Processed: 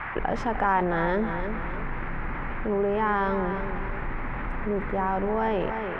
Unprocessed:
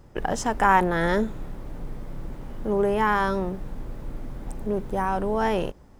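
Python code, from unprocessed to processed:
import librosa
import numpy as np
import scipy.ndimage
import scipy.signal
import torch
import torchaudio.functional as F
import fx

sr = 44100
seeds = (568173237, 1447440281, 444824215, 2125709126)

p1 = fx.low_shelf(x, sr, hz=360.0, db=-3.0)
p2 = fx.dmg_noise_band(p1, sr, seeds[0], low_hz=760.0, high_hz=2200.0, level_db=-41.0)
p3 = fx.air_absorb(p2, sr, metres=370.0)
p4 = p3 + fx.echo_feedback(p3, sr, ms=303, feedback_pct=35, wet_db=-12.0, dry=0)
p5 = fx.env_flatten(p4, sr, amount_pct=50)
y = p5 * librosa.db_to_amplitude(-3.5)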